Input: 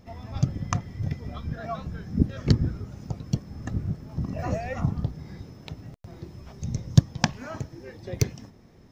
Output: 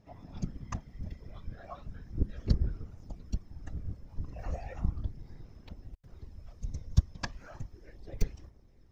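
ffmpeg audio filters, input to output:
-af "aphaser=in_gain=1:out_gain=1:delay=2:decay=0.3:speed=0.36:type=sinusoidal,afftfilt=real='hypot(re,im)*cos(2*PI*random(0))':imag='hypot(re,im)*sin(2*PI*random(1))':win_size=512:overlap=0.75,asubboost=boost=6.5:cutoff=67,volume=0.422"

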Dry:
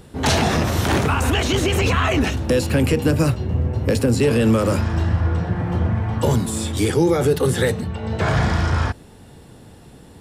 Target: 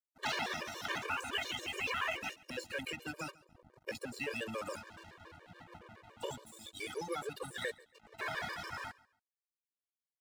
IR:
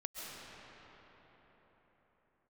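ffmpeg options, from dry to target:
-filter_complex "[0:a]afftdn=nr=22:nf=-32,acrossover=split=2500[s0][s1];[s1]acompressor=threshold=0.0112:ratio=4:attack=1:release=60[s2];[s0][s2]amix=inputs=2:normalize=0,aderivative,acrossover=split=5400[s3][s4];[s4]acompressor=threshold=0.00126:ratio=6[s5];[s3][s5]amix=inputs=2:normalize=0,aeval=exprs='sgn(val(0))*max(abs(val(0))-0.00251,0)':c=same,asplit=2[s6][s7];[s7]aecho=0:1:139|278:0.075|0.021[s8];[s6][s8]amix=inputs=2:normalize=0,afftfilt=real='re*gt(sin(2*PI*7.1*pts/sr)*(1-2*mod(floor(b*sr/1024/310),2)),0)':imag='im*gt(sin(2*PI*7.1*pts/sr)*(1-2*mod(floor(b*sr/1024/310),2)),0)':win_size=1024:overlap=0.75,volume=2"

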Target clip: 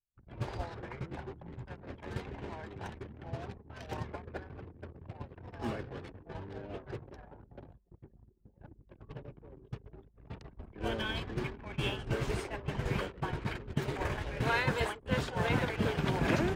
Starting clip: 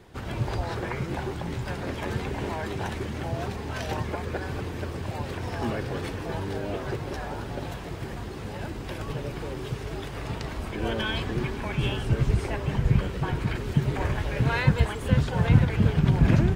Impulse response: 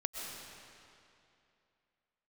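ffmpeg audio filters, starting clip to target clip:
-filter_complex "[0:a]agate=range=0.0224:threshold=0.0891:ratio=3:detection=peak,anlmdn=0.00631,acrossover=split=290|420|1700[s0][s1][s2][s3];[s0]acompressor=threshold=0.02:ratio=6[s4];[s4][s1][s2][s3]amix=inputs=4:normalize=0"

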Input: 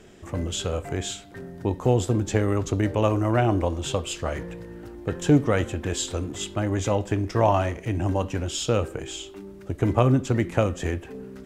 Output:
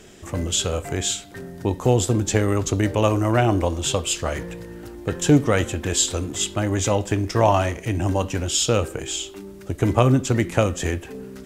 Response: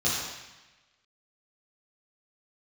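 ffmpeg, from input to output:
-af "highshelf=f=3400:g=9,volume=1.33"

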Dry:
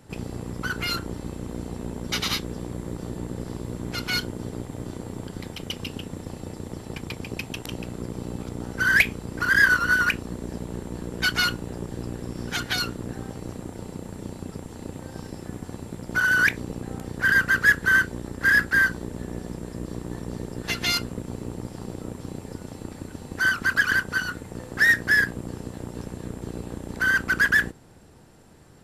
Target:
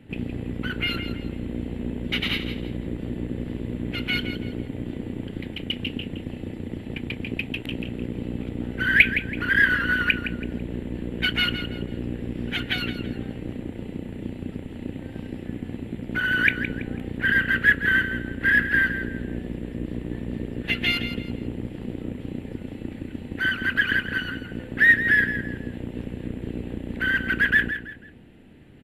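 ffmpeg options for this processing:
-af "firequalizer=gain_entry='entry(170,0);entry(240,6);entry(390,-1);entry(1100,-12);entry(1900,2);entry(2900,4);entry(5300,-23);entry(11000,-13)':delay=0.05:min_phase=1,aecho=1:1:165|330|495:0.299|0.0925|0.0287,volume=1.19"

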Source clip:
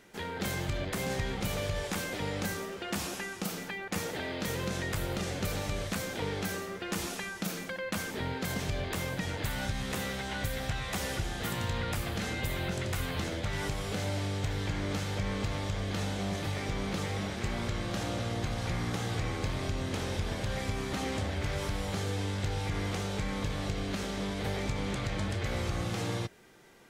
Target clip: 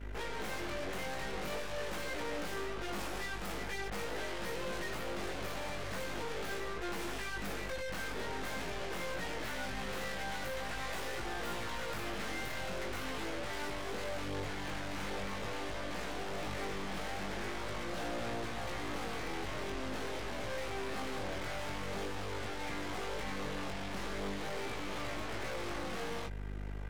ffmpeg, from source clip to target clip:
-filter_complex "[0:a]acrossover=split=240 2800:gain=0.141 1 0.224[s0][s1][s2];[s0][s1][s2]amix=inputs=3:normalize=0,aeval=exprs='val(0)+0.00355*(sin(2*PI*50*n/s)+sin(2*PI*2*50*n/s)/2+sin(2*PI*3*50*n/s)/3+sin(2*PI*4*50*n/s)/4+sin(2*PI*5*50*n/s)/5)':c=same,aeval=exprs='(tanh(316*val(0)+0.7)-tanh(0.7))/316':c=same,flanger=delay=17:depth=4.6:speed=0.44,volume=5.01"

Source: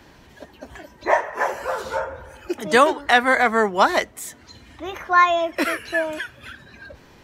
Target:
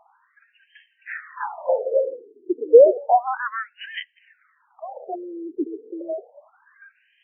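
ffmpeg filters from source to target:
-filter_complex "[0:a]asettb=1/sr,asplit=3[s0][s1][s2];[s0]atrim=end=6.014[s3];[s1]atrim=start=6.01:end=6.49,asetpts=PTS-STARTPTS,afade=t=in:d=0.004:c=qsin,afade=t=out:st=0.476:d=0.004:c=qsin,afreqshift=22[s4];[s2]atrim=start=6.486[s5];[s3][s4]acrossfade=d=0.004:c1=hsin:c2=qsin[s6];[s6][s5]acrossfade=d=0.004:c1=qsin:c2=hsin,equalizer=f=125:t=o:w=1:g=-11,equalizer=f=250:t=o:w=1:g=-9,equalizer=f=500:t=o:w=1:g=10,equalizer=f=1000:t=o:w=1:g=-7,equalizer=f=2000:t=o:w=1:g=-11,afftfilt=real='re*between(b*sr/1024,320*pow(2300/320,0.5+0.5*sin(2*PI*0.31*pts/sr))/1.41,320*pow(2300/320,0.5+0.5*sin(2*PI*0.31*pts/sr))*1.41)':imag='im*between(b*sr/1024,320*pow(2300/320,0.5+0.5*sin(2*PI*0.31*pts/sr))/1.41,320*pow(2300/320,0.5+0.5*sin(2*PI*0.31*pts/sr))*1.41)':win_size=1024:overlap=0.75,volume=1.58"

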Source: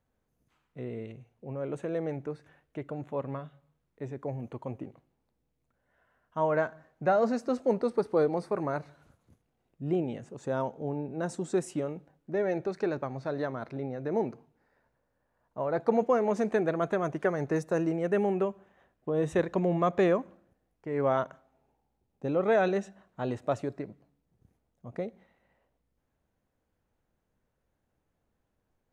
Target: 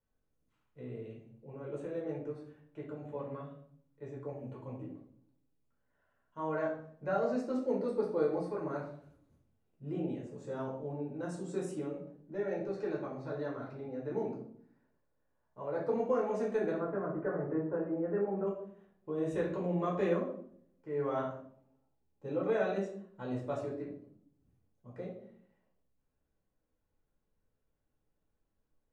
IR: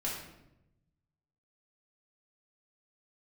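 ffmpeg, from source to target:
-filter_complex "[0:a]asettb=1/sr,asplit=3[s0][s1][s2];[s0]atrim=end=16.774[s3];[s1]atrim=start=16.77:end=18.47,asetpts=PTS-STARTPTS,afade=t=in:d=0.004:c=qsin,afade=t=out:st=1.696:d=0.004:c=qsin,lowpass=f=1600:w=0.5412,lowpass=f=1600:w=1.3066[s4];[s2]atrim=start=18.466[s5];[s3][s4]acrossfade=d=0.004:c1=hsin:c2=qsin[s6];[s6][s5]acrossfade=d=0.004:c1=qsin:c2=hsin[s7];[1:a]atrim=start_sample=2205,asetrate=79380,aresample=44100[s8];[s7][s8]afir=irnorm=-1:irlink=0,volume=0.501"

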